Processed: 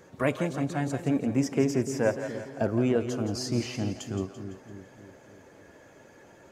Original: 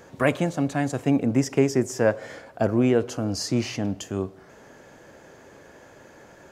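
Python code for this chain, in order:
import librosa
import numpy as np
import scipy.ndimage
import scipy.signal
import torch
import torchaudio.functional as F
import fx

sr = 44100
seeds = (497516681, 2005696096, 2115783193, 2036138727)

y = fx.spec_quant(x, sr, step_db=15)
y = fx.echo_split(y, sr, split_hz=470.0, low_ms=293, high_ms=169, feedback_pct=52, wet_db=-9.5)
y = F.gain(torch.from_numpy(y), -4.5).numpy()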